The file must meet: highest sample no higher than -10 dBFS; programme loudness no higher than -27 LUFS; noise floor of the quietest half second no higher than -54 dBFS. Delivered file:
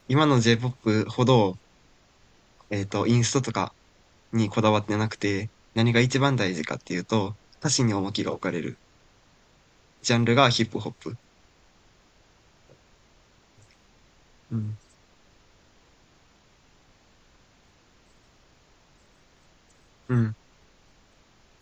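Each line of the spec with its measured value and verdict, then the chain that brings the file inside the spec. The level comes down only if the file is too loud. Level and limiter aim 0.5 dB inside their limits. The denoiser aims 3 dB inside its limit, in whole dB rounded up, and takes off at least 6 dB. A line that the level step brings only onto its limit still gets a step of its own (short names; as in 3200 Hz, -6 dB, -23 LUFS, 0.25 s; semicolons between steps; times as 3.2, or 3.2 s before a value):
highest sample -5.0 dBFS: fail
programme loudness -25.0 LUFS: fail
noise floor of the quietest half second -60 dBFS: OK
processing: gain -2.5 dB; limiter -10.5 dBFS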